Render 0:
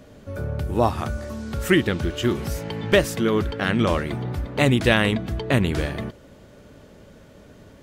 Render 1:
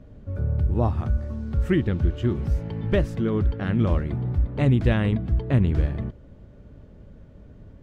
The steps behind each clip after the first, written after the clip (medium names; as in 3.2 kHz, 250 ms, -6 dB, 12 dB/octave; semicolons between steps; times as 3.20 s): RIAA curve playback; trim -9 dB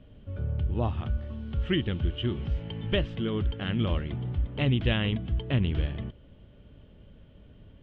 resonant low-pass 3.1 kHz, resonance Q 6.7; trim -6 dB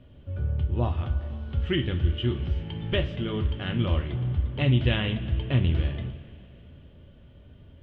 two-slope reverb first 0.28 s, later 3 s, from -18 dB, DRR 4 dB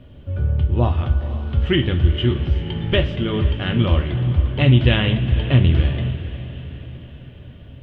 echo that smears into a reverb 480 ms, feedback 54%, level -14.5 dB; trim +8 dB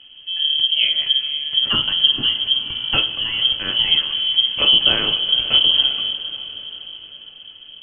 frequency inversion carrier 3.2 kHz; trim -2 dB